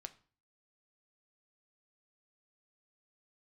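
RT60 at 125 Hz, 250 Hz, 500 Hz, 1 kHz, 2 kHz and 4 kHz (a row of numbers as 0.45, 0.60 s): 0.55, 0.50, 0.40, 0.40, 0.40, 0.35 s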